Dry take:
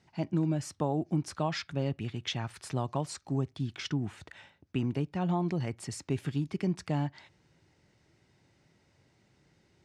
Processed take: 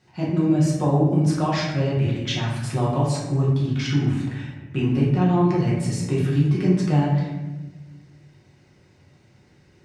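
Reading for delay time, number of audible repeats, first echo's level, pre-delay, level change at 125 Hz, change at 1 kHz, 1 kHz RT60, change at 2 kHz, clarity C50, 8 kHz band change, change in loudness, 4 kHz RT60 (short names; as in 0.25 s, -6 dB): none, none, none, 5 ms, +13.0 dB, +9.5 dB, 1.0 s, +9.5 dB, 1.5 dB, +7.5 dB, +11.5 dB, 0.70 s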